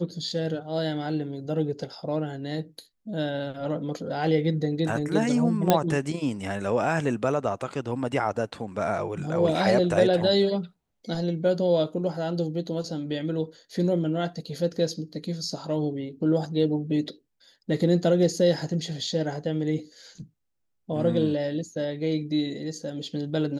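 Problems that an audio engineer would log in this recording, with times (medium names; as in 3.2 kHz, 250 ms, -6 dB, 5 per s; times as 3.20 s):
5.70 s: pop -5 dBFS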